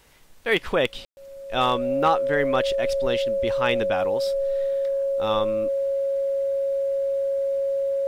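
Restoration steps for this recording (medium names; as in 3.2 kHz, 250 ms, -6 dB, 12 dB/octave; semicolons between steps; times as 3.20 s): clip repair -10.5 dBFS; band-stop 550 Hz, Q 30; room tone fill 1.05–1.17 s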